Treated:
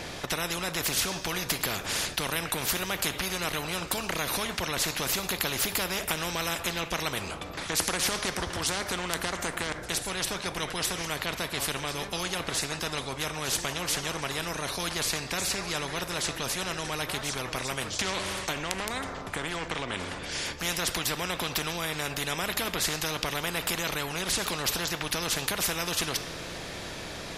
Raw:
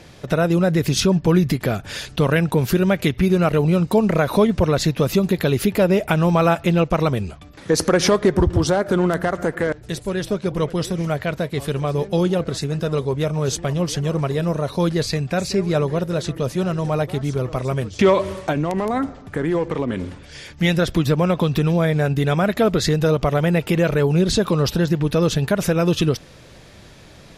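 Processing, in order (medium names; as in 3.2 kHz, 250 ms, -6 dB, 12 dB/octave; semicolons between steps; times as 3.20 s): two-slope reverb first 0.44 s, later 3.4 s, from -20 dB, DRR 14 dB; spectrum-flattening compressor 4:1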